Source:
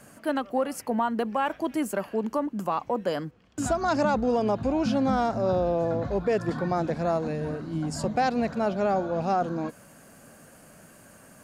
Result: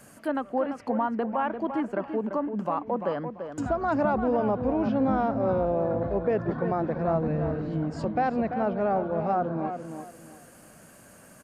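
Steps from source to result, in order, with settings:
treble cut that deepens with the level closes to 1,800 Hz, closed at −25.5 dBFS
0:07.08–0:07.71: low-shelf EQ 150 Hz +10.5 dB
downsampling to 32,000 Hz
high-shelf EQ 9,900 Hz +5 dB
tape delay 342 ms, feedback 28%, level −6.5 dB, low-pass 2,100 Hz
level −1 dB

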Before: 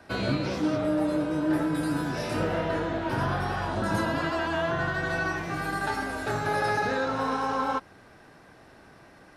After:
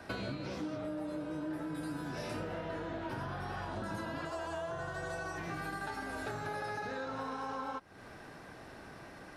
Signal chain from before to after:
0:04.25–0:05.38: octave-band graphic EQ 250/500/2,000/4,000/8,000 Hz −10/+5/−6/−4/+10 dB
downward compressor 8 to 1, threshold −39 dBFS, peak gain reduction 17 dB
level +2 dB

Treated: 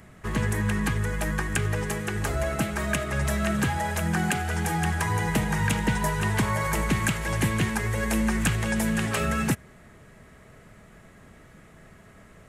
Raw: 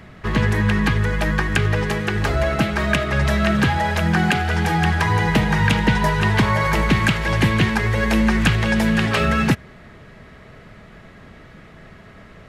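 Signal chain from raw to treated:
high shelf with overshoot 6,000 Hz +10.5 dB, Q 1.5
level −7.5 dB

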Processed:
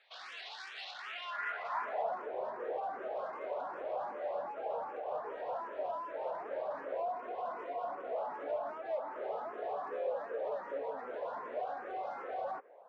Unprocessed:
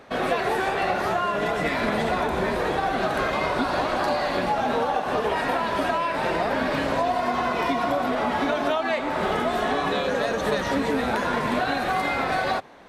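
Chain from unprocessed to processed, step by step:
three-way crossover with the lows and the highs turned down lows −20 dB, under 560 Hz, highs −15 dB, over 2,500 Hz
soft clipping −29 dBFS, distortion −10 dB
band-pass filter sweep 4,000 Hz → 500 Hz, 0:00.90–0:02.19
frequency shifter mixed with the dry sound +2.6 Hz
level +3.5 dB

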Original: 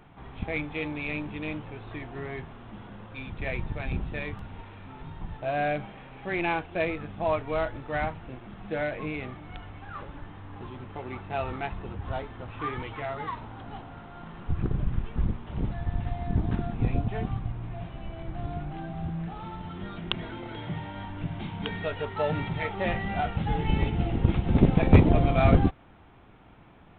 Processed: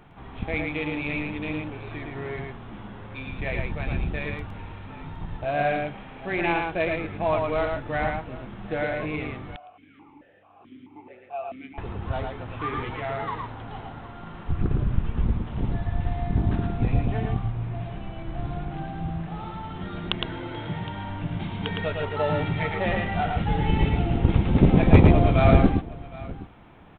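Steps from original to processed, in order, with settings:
multi-tap delay 111/764 ms −3.5/−18.5 dB
0:09.56–0:11.78: formant filter that steps through the vowels 4.6 Hz
level +2 dB

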